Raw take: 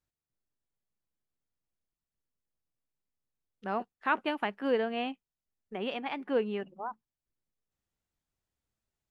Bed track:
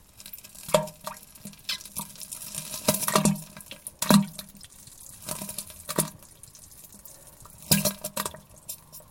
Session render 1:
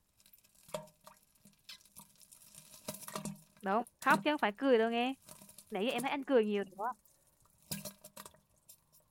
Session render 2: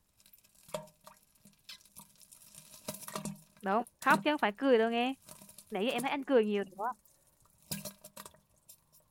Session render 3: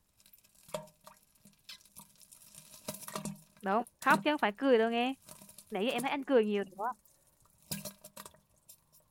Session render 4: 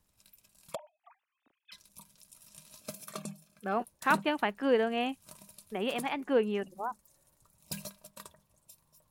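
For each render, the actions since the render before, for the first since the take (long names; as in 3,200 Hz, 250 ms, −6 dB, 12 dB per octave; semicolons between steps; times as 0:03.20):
mix in bed track −20.5 dB
level +2 dB
no processing that can be heard
0:00.75–0:01.72: three sine waves on the formant tracks; 0:02.81–0:03.77: notch comb filter 950 Hz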